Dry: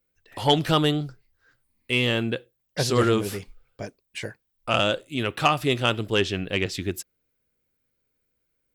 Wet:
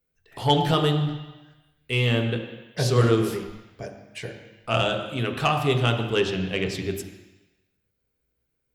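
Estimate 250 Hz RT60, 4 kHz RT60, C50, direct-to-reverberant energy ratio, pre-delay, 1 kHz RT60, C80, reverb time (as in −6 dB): 0.95 s, 1.2 s, 6.5 dB, 3.0 dB, 3 ms, 1.2 s, 8.0 dB, 1.1 s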